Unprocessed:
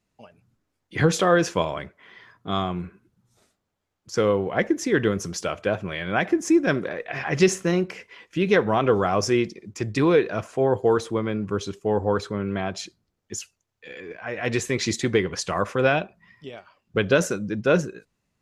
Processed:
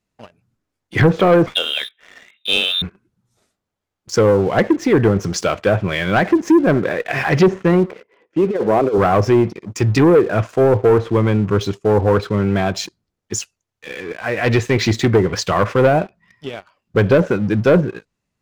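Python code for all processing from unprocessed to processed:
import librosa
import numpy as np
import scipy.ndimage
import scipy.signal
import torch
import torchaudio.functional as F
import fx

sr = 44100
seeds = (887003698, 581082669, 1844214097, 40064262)

y = fx.chain(x, sr, fx.freq_invert(carrier_hz=3800),
    fx.doubler(ms=19.0, db=-14.0), at=(1.46, 2.82))
y = fx.chain(y, sr, fx.bandpass_q(hz=450.0, q=1.3),
    fx.over_compress(threshold_db=-23.0, ratio=-0.5), at=(7.86, 8.98))
y = fx.env_lowpass_down(y, sr, base_hz=990.0, full_db=-15.5)
y = fx.dynamic_eq(y, sr, hz=110.0, q=5.1, threshold_db=-48.0, ratio=4.0, max_db=7)
y = fx.leveller(y, sr, passes=2)
y = F.gain(torch.from_numpy(y), 2.5).numpy()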